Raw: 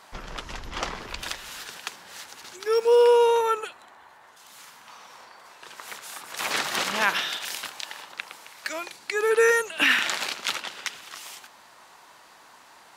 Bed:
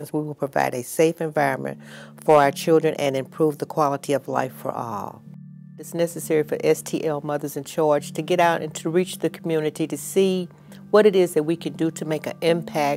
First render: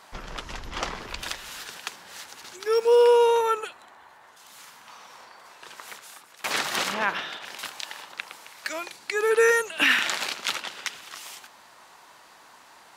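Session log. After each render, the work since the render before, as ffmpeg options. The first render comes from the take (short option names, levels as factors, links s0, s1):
-filter_complex "[0:a]asettb=1/sr,asplit=3[s0][s1][s2];[s0]atrim=end=6.944[s3];[s1]atrim=start=6.94:end=7.59,asetpts=PTS-STARTPTS,afade=t=in:d=0.004:c=qsin,afade=t=out:st=0.646:d=0.004:c=qsin,lowpass=f=1600:p=1[s4];[s2]atrim=start=7.586[s5];[s3][s4]acrossfade=d=0.004:c1=hsin:c2=qsin[s6];[s6][s5]acrossfade=d=0.004:c1=qsin:c2=hsin,asplit=2[s7][s8];[s7]atrim=end=6.44,asetpts=PTS-STARTPTS,afade=t=out:st=5.72:d=0.72:silence=0.0668344[s9];[s8]atrim=start=6.44,asetpts=PTS-STARTPTS,afade=t=in:d=0.004:c=hsin:silence=0.0668344[s10];[s9][s10]concat=n=2:v=0:a=1"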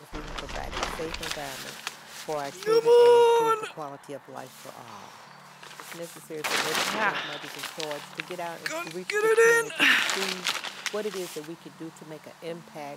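-filter_complex "[1:a]volume=0.141[s0];[0:a][s0]amix=inputs=2:normalize=0"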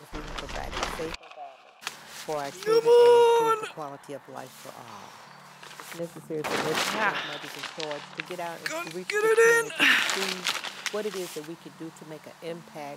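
-filter_complex "[0:a]asplit=3[s0][s1][s2];[s0]afade=t=out:st=1.14:d=0.02[s3];[s1]asplit=3[s4][s5][s6];[s4]bandpass=f=730:t=q:w=8,volume=1[s7];[s5]bandpass=f=1090:t=q:w=8,volume=0.501[s8];[s6]bandpass=f=2440:t=q:w=8,volume=0.355[s9];[s7][s8][s9]amix=inputs=3:normalize=0,afade=t=in:st=1.14:d=0.02,afade=t=out:st=1.81:d=0.02[s10];[s2]afade=t=in:st=1.81:d=0.02[s11];[s3][s10][s11]amix=inputs=3:normalize=0,asettb=1/sr,asplit=3[s12][s13][s14];[s12]atrim=end=5.994[s15];[s13]atrim=start=5.99:end=6.77,asetpts=PTS-STARTPTS,afade=t=in:d=0.004:c=qsin,afade=t=out:st=0.776:d=0.004:c=qsin,tiltshelf=f=970:g=7[s16];[s14]atrim=start=6.766[s17];[s15][s16]acrossfade=d=0.004:c1=hsin:c2=qsin[s18];[s18][s17]acrossfade=d=0.004:c1=qsin:c2=hsin,asettb=1/sr,asplit=3[s19][s20][s21];[s19]atrim=end=7.594[s22];[s20]atrim=start=7.59:end=8.26,asetpts=PTS-STARTPTS,afade=t=in:d=0.004:c=qsin,afade=t=out:st=0.666:d=0.004:c=qsin,lowpass=6200[s23];[s21]atrim=start=8.256[s24];[s22][s23]acrossfade=d=0.004:c1=hsin:c2=qsin[s25];[s25][s24]acrossfade=d=0.004:c1=qsin:c2=hsin"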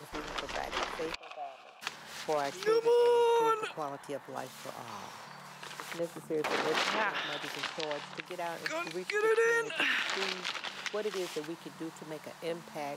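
-filter_complex "[0:a]acrossover=split=250|5900[s0][s1][s2];[s0]acompressor=threshold=0.00282:ratio=4[s3];[s1]acompressor=threshold=0.0708:ratio=4[s4];[s2]acompressor=threshold=0.002:ratio=4[s5];[s3][s4][s5]amix=inputs=3:normalize=0,alimiter=limit=0.119:level=0:latency=1:release=456"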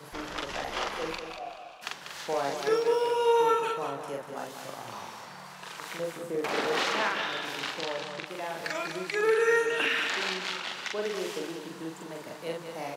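-filter_complex "[0:a]asplit=2[s0][s1];[s1]adelay=43,volume=0.794[s2];[s0][s2]amix=inputs=2:normalize=0,aecho=1:1:193|386|579|772:0.422|0.152|0.0547|0.0197"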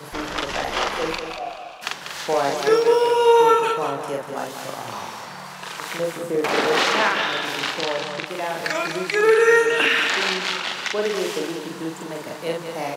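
-af "volume=2.82"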